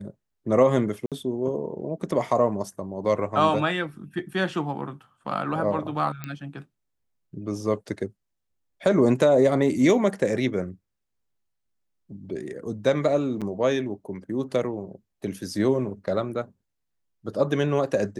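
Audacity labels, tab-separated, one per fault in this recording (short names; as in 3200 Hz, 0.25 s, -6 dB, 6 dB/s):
1.060000	1.120000	gap 57 ms
6.240000	6.240000	pop -17 dBFS
13.410000	13.420000	gap 6.9 ms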